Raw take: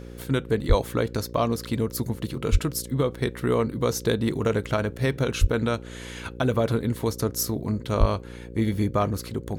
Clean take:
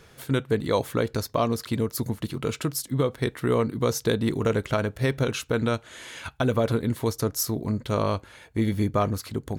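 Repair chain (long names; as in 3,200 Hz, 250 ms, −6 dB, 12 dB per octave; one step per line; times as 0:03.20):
hum removal 59.5 Hz, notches 9
high-pass at the plosives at 0:00.68/0:02.51/0:05.40/0:07.99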